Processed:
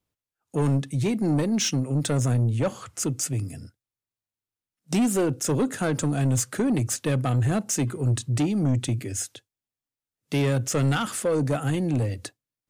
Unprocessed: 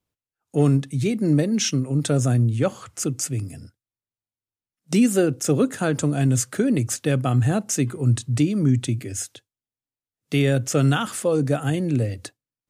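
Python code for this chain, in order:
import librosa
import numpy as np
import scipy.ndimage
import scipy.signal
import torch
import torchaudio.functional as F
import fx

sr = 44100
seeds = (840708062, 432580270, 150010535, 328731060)

y = 10.0 ** (-17.5 / 20.0) * np.tanh(x / 10.0 ** (-17.5 / 20.0))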